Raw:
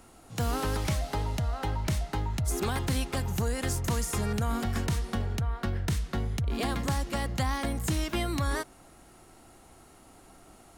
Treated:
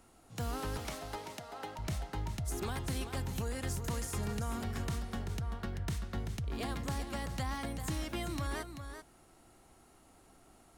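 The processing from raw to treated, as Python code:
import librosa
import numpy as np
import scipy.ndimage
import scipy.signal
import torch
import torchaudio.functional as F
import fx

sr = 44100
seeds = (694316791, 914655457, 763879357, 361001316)

p1 = fx.highpass(x, sr, hz=300.0, slope=12, at=(0.77, 1.79))
p2 = p1 + fx.echo_single(p1, sr, ms=387, db=-8.5, dry=0)
y = F.gain(torch.from_numpy(p2), -8.0).numpy()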